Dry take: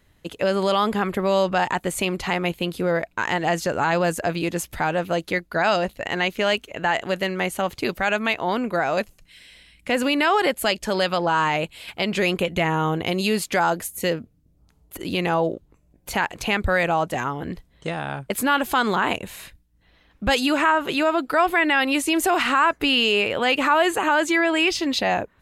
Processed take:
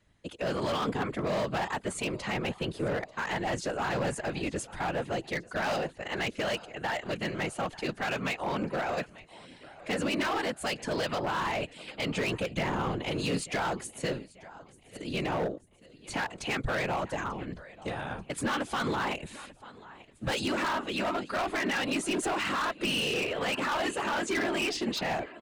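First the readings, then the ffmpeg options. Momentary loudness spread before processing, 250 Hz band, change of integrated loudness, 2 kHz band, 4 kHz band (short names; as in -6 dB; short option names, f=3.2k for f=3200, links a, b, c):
8 LU, -9.0 dB, -9.5 dB, -10.0 dB, -9.0 dB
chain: -filter_complex "[0:a]aresample=22050,aresample=44100,aecho=1:1:889|1778|2667:0.0891|0.0419|0.0197,afftfilt=real='hypot(re,im)*cos(2*PI*random(0))':imag='hypot(re,im)*sin(2*PI*random(1))':win_size=512:overlap=0.75,acrossover=split=240[a][b];[b]asoftclip=type=hard:threshold=-26dB[c];[a][c]amix=inputs=2:normalize=0,volume=-1.5dB"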